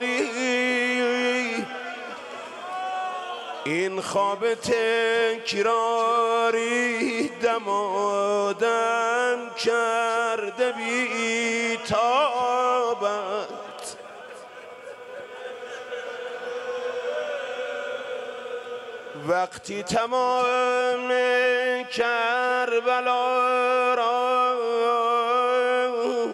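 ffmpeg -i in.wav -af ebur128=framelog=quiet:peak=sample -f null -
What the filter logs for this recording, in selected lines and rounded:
Integrated loudness:
  I:         -23.9 LUFS
  Threshold: -34.4 LUFS
Loudness range:
  LRA:         9.7 LU
  Threshold: -44.5 LUFS
  LRA low:   -31.7 LUFS
  LRA high:  -22.1 LUFS
Sample peak:
  Peak:      -12.1 dBFS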